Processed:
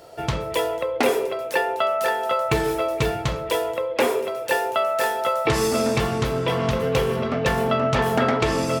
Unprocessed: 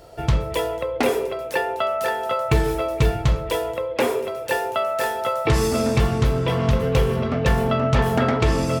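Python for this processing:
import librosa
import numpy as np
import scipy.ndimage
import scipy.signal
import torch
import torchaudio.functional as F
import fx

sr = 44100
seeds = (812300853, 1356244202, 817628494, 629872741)

y = fx.highpass(x, sr, hz=250.0, slope=6)
y = y * 10.0 ** (1.5 / 20.0)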